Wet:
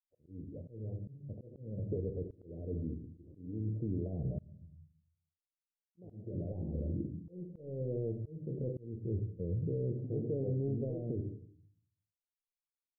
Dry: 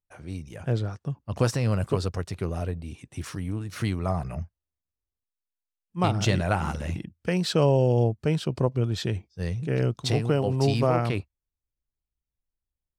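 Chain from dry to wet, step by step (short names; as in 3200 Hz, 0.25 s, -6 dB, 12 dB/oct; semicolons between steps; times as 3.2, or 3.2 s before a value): low shelf 200 Hz -7.5 dB; in parallel at -7 dB: soft clip -20.5 dBFS, distortion -12 dB; on the sum: expander -36 dBFS; reverse; compressor 6:1, threshold -30 dBFS, peak gain reduction 13 dB; reverse; shoebox room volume 56 m³, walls mixed, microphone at 0.33 m; limiter -26.5 dBFS, peak gain reduction 7.5 dB; steep low-pass 530 Hz 48 dB/oct; auto swell 0.356 s; gain +1 dB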